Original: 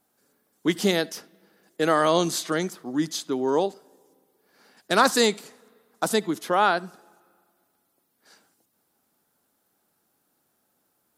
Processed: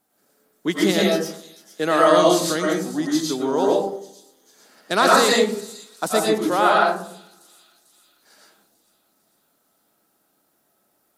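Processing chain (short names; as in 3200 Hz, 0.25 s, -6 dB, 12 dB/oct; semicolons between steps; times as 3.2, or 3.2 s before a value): low shelf 81 Hz -5.5 dB; on a send: thin delay 0.447 s, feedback 56%, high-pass 5400 Hz, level -13.5 dB; on the sum: digital reverb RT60 0.61 s, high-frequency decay 0.35×, pre-delay 70 ms, DRR -3.5 dB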